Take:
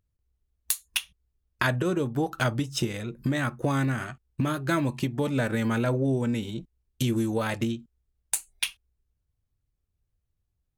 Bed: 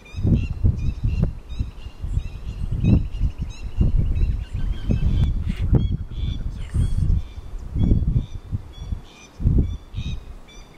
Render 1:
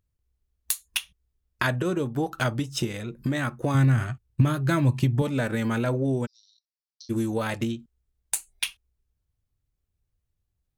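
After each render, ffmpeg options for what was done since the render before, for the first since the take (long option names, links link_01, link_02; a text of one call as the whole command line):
ffmpeg -i in.wav -filter_complex "[0:a]asettb=1/sr,asplit=3[link_01][link_02][link_03];[link_01]atrim=end=3.744[link_04];[link_02]atrim=start=3.74:end=5.22,asetpts=PTS-STARTPTS,afade=type=in:duration=0.004:curve=qsin,afade=type=out:start_time=1.476:duration=0.004:curve=qsin,equalizer=frequency=110:width_type=o:width=0.78:gain=14[link_05];[link_03]atrim=start=5.216[link_06];[link_04][link_05]acrossfade=duration=0.004:curve1=hsin:curve2=qsin[link_07];[link_07][link_06]acrossfade=duration=0.004:curve1=qsin:curve2=hsin,asplit=3[link_08][link_09][link_10];[link_08]afade=type=out:start_time=6.25:duration=0.02[link_11];[link_09]asuperpass=centerf=4900:order=8:qfactor=3,afade=type=in:start_time=6.25:duration=0.02,afade=type=out:start_time=7.09:duration=0.02[link_12];[link_10]afade=type=in:start_time=7.09:duration=0.02[link_13];[link_11][link_12][link_13]amix=inputs=3:normalize=0" out.wav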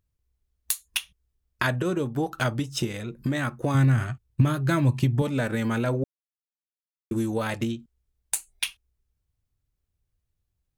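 ffmpeg -i in.wav -filter_complex "[0:a]asplit=3[link_01][link_02][link_03];[link_01]atrim=end=6.04,asetpts=PTS-STARTPTS,afade=type=out:start_time=6.036:duration=0.004:curve=hsin[link_04];[link_02]atrim=start=6.04:end=7.11,asetpts=PTS-STARTPTS,volume=0[link_05];[link_03]atrim=start=7.11,asetpts=PTS-STARTPTS,afade=type=in:duration=0.004:curve=hsin[link_06];[link_04][link_05][link_06]concat=n=3:v=0:a=1" out.wav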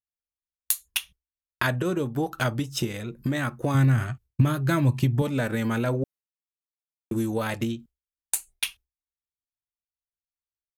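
ffmpeg -i in.wav -af "agate=range=-33dB:threshold=-42dB:ratio=3:detection=peak,equalizer=frequency=13000:width_type=o:width=0.27:gain=7" out.wav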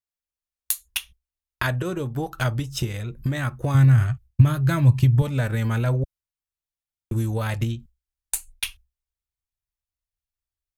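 ffmpeg -i in.wav -af "asubboost=boost=9:cutoff=88" out.wav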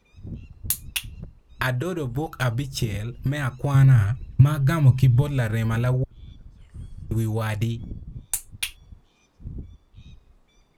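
ffmpeg -i in.wav -i bed.wav -filter_complex "[1:a]volume=-18dB[link_01];[0:a][link_01]amix=inputs=2:normalize=0" out.wav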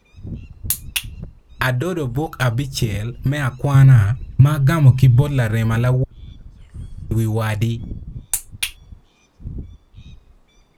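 ffmpeg -i in.wav -af "volume=5.5dB,alimiter=limit=-1dB:level=0:latency=1" out.wav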